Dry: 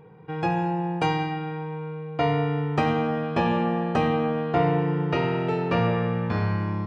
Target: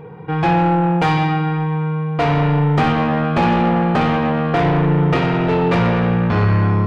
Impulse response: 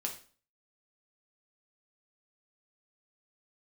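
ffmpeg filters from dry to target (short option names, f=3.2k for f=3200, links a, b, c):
-filter_complex "[0:a]asoftclip=type=tanh:threshold=-26dB,asplit=2[a][b];[1:a]atrim=start_sample=2205,lowpass=4.1k[c];[b][c]afir=irnorm=-1:irlink=0,volume=0.5dB[d];[a][d]amix=inputs=2:normalize=0,volume=7.5dB"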